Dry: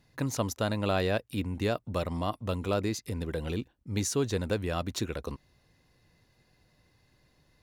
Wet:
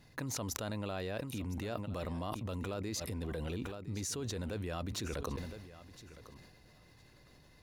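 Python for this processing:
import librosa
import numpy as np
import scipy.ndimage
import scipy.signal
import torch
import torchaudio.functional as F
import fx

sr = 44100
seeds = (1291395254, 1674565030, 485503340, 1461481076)

y = fx.level_steps(x, sr, step_db=23)
y = fx.echo_feedback(y, sr, ms=1012, feedback_pct=15, wet_db=-16.0)
y = fx.sustainer(y, sr, db_per_s=43.0)
y = F.gain(torch.from_numpy(y), 7.5).numpy()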